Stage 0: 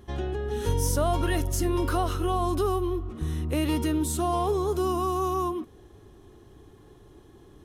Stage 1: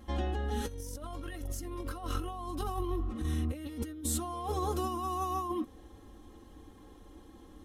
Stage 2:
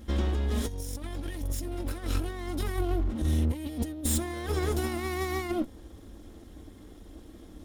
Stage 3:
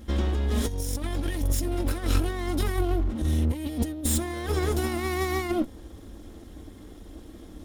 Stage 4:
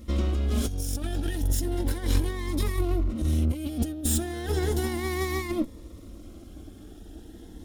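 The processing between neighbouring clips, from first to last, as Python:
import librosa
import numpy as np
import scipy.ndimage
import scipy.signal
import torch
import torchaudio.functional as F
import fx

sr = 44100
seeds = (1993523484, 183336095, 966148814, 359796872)

y1 = x + 0.98 * np.pad(x, (int(3.8 * sr / 1000.0), 0))[:len(x)]
y1 = fx.over_compress(y1, sr, threshold_db=-27.0, ratio=-0.5)
y1 = F.gain(torch.from_numpy(y1), -7.0).numpy()
y2 = fx.lower_of_two(y1, sr, delay_ms=0.57)
y2 = fx.peak_eq(y2, sr, hz=1400.0, db=-7.5, octaves=1.4)
y2 = F.gain(torch.from_numpy(y2), 6.5).numpy()
y3 = fx.rider(y2, sr, range_db=3, speed_s=0.5)
y3 = F.gain(torch.from_numpy(y3), 4.0).numpy()
y4 = fx.notch_cascade(y3, sr, direction='rising', hz=0.34)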